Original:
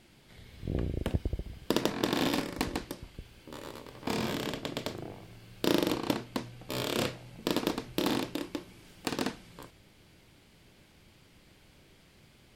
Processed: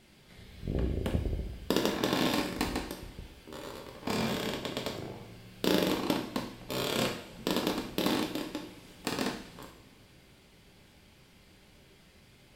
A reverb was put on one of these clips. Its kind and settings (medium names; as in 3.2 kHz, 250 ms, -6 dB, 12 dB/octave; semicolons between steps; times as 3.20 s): two-slope reverb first 0.58 s, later 3.1 s, from -22 dB, DRR 2 dB; trim -1 dB